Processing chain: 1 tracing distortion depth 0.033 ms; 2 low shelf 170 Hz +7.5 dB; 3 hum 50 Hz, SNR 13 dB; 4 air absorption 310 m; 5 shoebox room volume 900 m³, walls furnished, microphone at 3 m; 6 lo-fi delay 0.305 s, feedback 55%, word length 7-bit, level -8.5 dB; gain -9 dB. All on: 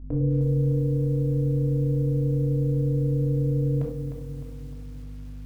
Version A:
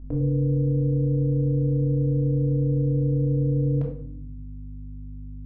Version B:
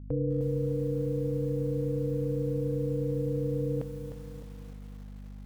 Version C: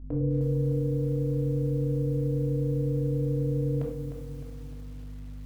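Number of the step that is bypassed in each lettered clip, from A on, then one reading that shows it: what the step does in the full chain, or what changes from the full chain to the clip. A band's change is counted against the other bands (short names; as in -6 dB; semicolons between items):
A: 6, loudness change +1.0 LU; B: 5, loudness change -6.5 LU; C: 2, momentary loudness spread change -1 LU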